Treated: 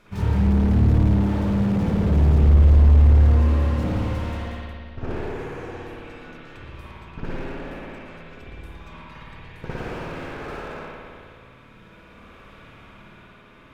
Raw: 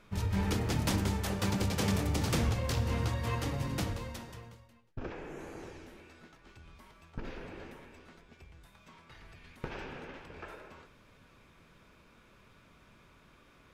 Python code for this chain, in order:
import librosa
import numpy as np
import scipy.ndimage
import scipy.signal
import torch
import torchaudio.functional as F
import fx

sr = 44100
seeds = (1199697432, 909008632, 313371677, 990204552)

y = fx.tremolo_shape(x, sr, shape='triangle', hz=0.5, depth_pct=45)
y = fx.rev_spring(y, sr, rt60_s=2.1, pass_ms=(55,), chirp_ms=70, drr_db=-10.0)
y = fx.slew_limit(y, sr, full_power_hz=14.0)
y = F.gain(torch.from_numpy(y), 5.5).numpy()